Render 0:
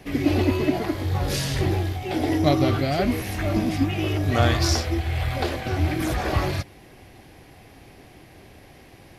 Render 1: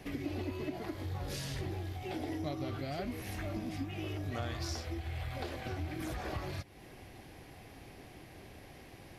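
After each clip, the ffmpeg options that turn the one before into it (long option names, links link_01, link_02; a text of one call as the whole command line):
ffmpeg -i in.wav -af "acompressor=threshold=-35dB:ratio=3,volume=-4.5dB" out.wav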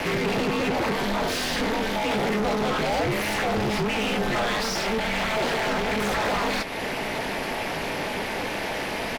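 ffmpeg -i in.wav -filter_complex "[0:a]asplit=2[link_01][link_02];[link_02]highpass=frequency=720:poles=1,volume=33dB,asoftclip=type=tanh:threshold=-23.5dB[link_03];[link_01][link_03]amix=inputs=2:normalize=0,lowpass=frequency=2900:poles=1,volume=-6dB,aeval=exprs='val(0)*sin(2*PI*110*n/s)':channel_layout=same,asplit=2[link_04][link_05];[link_05]adelay=20,volume=-13dB[link_06];[link_04][link_06]amix=inputs=2:normalize=0,volume=9dB" out.wav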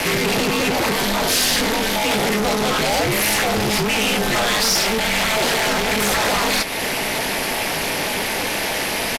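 ffmpeg -i in.wav -af "crystalizer=i=3:c=0,aresample=32000,aresample=44100,volume=4dB" out.wav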